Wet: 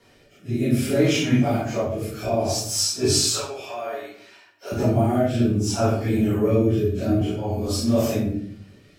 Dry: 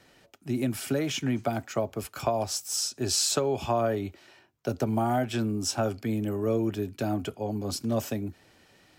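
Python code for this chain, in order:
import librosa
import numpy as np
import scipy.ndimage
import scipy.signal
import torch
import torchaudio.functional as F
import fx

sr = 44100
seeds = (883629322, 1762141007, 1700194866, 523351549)

y = fx.phase_scramble(x, sr, seeds[0], window_ms=100)
y = fx.highpass(y, sr, hz=860.0, slope=12, at=(3.31, 4.72))
y = fx.room_shoebox(y, sr, seeds[1], volume_m3=100.0, walls='mixed', distance_m=1.7)
y = fx.rotary(y, sr, hz=0.6)
y = fx.band_squash(y, sr, depth_pct=40, at=(7.21, 7.68))
y = y * librosa.db_to_amplitude(1.0)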